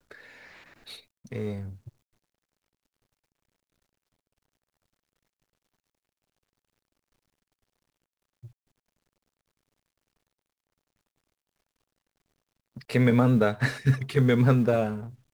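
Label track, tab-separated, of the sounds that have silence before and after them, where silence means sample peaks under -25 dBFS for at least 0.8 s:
1.330000	1.480000	sound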